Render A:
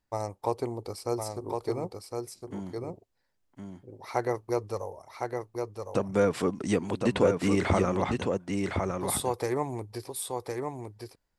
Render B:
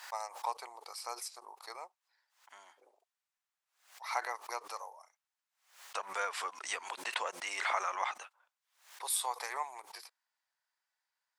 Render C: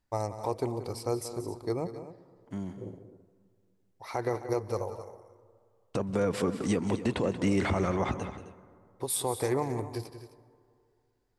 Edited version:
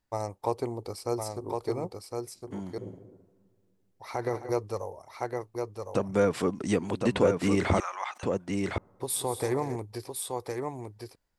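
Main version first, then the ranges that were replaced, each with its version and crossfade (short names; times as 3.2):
A
2.78–4.52 from C
7.8–8.23 from B
8.78–9.76 from C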